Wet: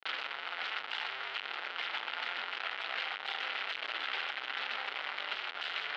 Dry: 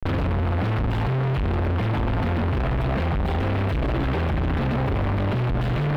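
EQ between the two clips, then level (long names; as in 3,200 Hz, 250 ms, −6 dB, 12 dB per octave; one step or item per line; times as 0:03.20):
loudspeaker in its box 430–4,300 Hz, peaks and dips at 450 Hz +3 dB, 800 Hz +5 dB, 1,400 Hz +8 dB, 2,000 Hz +4 dB, 3,000 Hz +4 dB
first difference
high-shelf EQ 2,200 Hz +11.5 dB
0.0 dB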